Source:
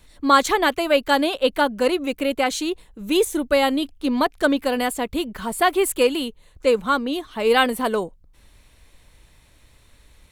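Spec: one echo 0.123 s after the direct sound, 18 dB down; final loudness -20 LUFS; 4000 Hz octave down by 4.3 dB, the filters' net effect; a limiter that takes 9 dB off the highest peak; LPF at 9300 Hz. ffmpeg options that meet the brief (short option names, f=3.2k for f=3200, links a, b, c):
-af "lowpass=9.3k,equalizer=f=4k:t=o:g=-6,alimiter=limit=-12.5dB:level=0:latency=1,aecho=1:1:123:0.126,volume=4dB"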